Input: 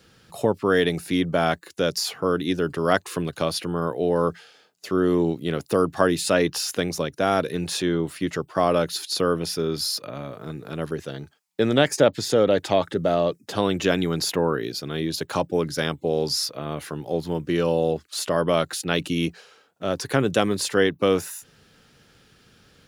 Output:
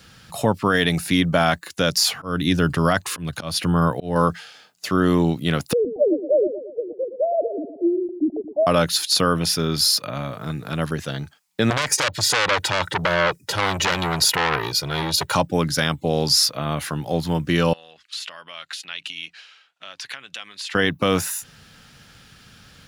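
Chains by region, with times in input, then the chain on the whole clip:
2.09–4.16 s: bass shelf 160 Hz +7 dB + slow attack 242 ms
5.73–8.67 s: formants replaced by sine waves + steep low-pass 680 Hz 72 dB/octave + feedback delay 115 ms, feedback 51%, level -11.5 dB
11.70–15.35 s: comb 2.1 ms, depth 81% + transformer saturation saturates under 4 kHz
17.73–20.75 s: compression 4:1, threshold -30 dBFS + band-pass filter 2.8 kHz, Q 1.4
whole clip: peaking EQ 400 Hz -10.5 dB 1 oct; loudness maximiser +14 dB; trim -5.5 dB

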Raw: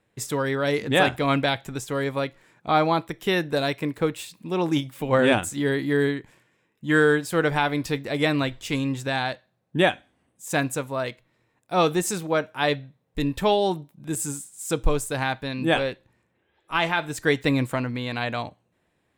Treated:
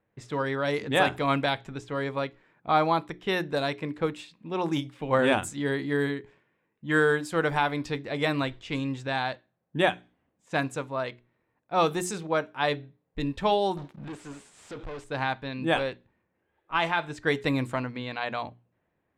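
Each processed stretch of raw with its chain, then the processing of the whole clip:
13.77–15.04 s: bass shelf 210 Hz -10.5 dB + compression 4:1, threshold -40 dBFS + waveshaping leveller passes 5
whole clip: level-controlled noise filter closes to 1.9 kHz, open at -17.5 dBFS; hum notches 60/120/180/240/300/360/420 Hz; dynamic bell 1 kHz, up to +4 dB, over -35 dBFS, Q 1.4; trim -4.5 dB

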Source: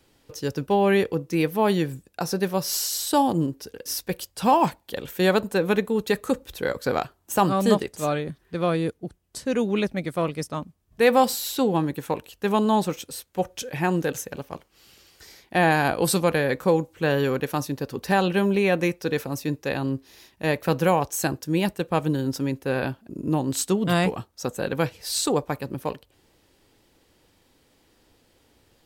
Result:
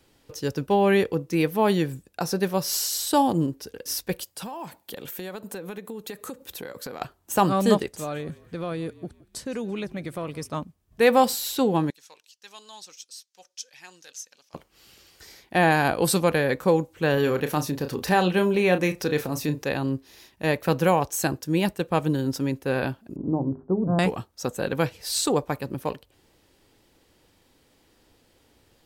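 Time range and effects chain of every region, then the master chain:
4.23–7.01 s: high-pass 120 Hz + treble shelf 10 kHz +8.5 dB + compression 12:1, threshold -32 dBFS
7.96–10.53 s: compression 3:1, threshold -29 dBFS + frequency-shifting echo 168 ms, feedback 40%, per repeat -43 Hz, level -20.5 dB
11.90–14.54 s: band-pass filter 5.5 kHz, Q 2.6 + phaser 1 Hz, delay 4.3 ms, feedback 23%
17.14–19.64 s: doubling 33 ms -9.5 dB + upward compressor, threshold -23 dBFS
23.16–23.99 s: companding laws mixed up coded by mu + Bessel low-pass 630 Hz, order 8 + hum notches 50/100/150/200/250/300/350/400 Hz
whole clip: none

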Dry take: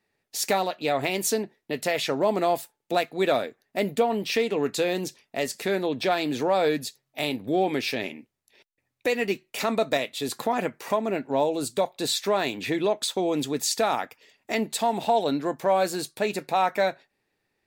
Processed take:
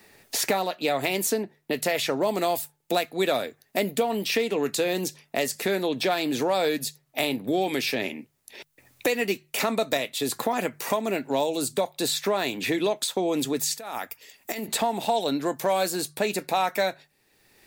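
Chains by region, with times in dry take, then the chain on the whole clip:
13.77–14.68 s: pre-emphasis filter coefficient 0.8 + compressor with a negative ratio -41 dBFS
whole clip: treble shelf 6.9 kHz +9.5 dB; hum notches 50/100/150 Hz; three bands compressed up and down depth 70%; trim -1 dB

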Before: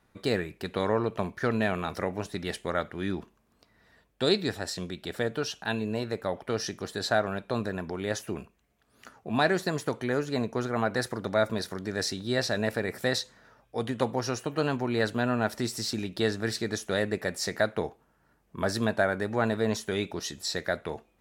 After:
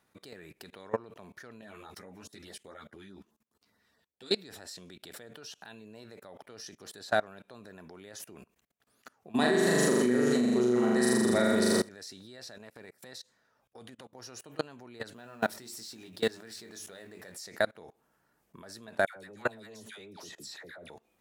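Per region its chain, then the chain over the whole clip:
1.61–4.32 s: LFO notch sine 4.8 Hz 520–2700 Hz + three-phase chorus
9.35–11.89 s: peaking EQ 8.3 kHz +10.5 dB 0.62 oct + small resonant body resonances 230/370/1900/3000 Hz, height 15 dB, ringing for 65 ms + flutter echo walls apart 7 m, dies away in 1.4 s
12.58–14.15 s: transient shaper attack -9 dB, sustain -3 dB + compression 3:1, threshold -44 dBFS
15.16–17.34 s: companding laws mixed up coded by mu + hum notches 50/100/150/200/250/300/350 Hz + doubling 22 ms -8.5 dB
19.06–20.90 s: phase dispersion lows, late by 98 ms, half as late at 1.1 kHz + three bands compressed up and down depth 40%
whole clip: level held to a coarse grid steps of 24 dB; high-pass 170 Hz 6 dB/octave; treble shelf 4.9 kHz +7 dB

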